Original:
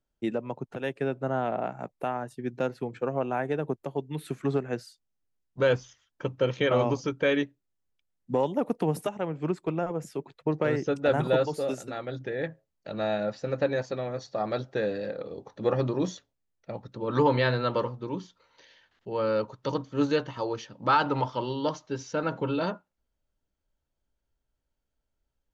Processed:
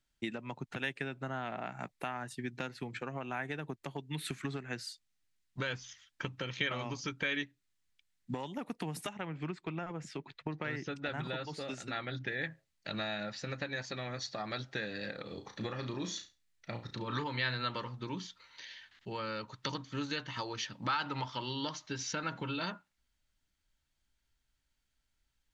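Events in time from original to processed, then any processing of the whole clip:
0:09.13–0:12.28: high-frequency loss of the air 100 metres
0:15.24–0:17.24: flutter between parallel walls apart 5.9 metres, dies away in 0.26 s
whole clip: downward compressor 5 to 1, threshold −33 dBFS; graphic EQ with 10 bands 500 Hz −9 dB, 2,000 Hz +8 dB, 4,000 Hz +7 dB, 8,000 Hz +6 dB

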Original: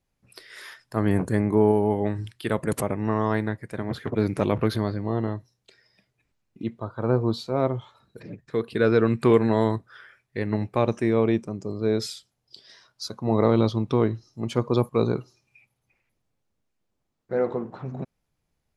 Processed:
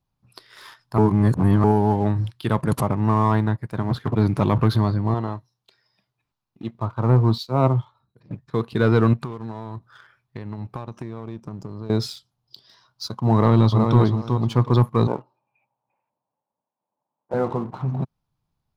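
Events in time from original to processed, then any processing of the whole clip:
0:00.98–0:01.64: reverse
0:05.14–0:06.75: low-shelf EQ 280 Hz −10 dB
0:07.38–0:08.31: multiband upward and downward expander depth 70%
0:09.13–0:11.90: downward compressor, threshold −34 dBFS
0:13.35–0:14.00: delay throw 370 ms, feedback 20%, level −6 dB
0:15.07–0:17.34: loudspeaker in its box 310–2,300 Hz, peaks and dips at 370 Hz −4 dB, 570 Hz +9 dB, 900 Hz +9 dB, 1,300 Hz −8 dB, 2,000 Hz −9 dB
whole clip: graphic EQ with 10 bands 125 Hz +7 dB, 500 Hz −6 dB, 1,000 Hz +8 dB, 2,000 Hz −8 dB, 4,000 Hz +3 dB, 8,000 Hz −8 dB; leveller curve on the samples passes 1

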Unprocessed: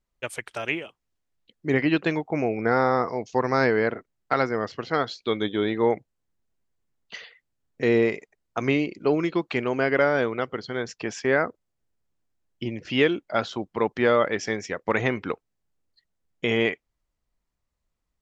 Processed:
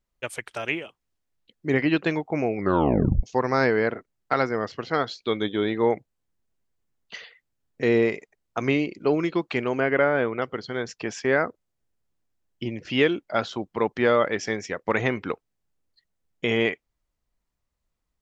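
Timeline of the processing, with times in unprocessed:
0:02.56: tape stop 0.67 s
0:09.80–0:10.42: low-pass filter 3,100 Hz 24 dB per octave

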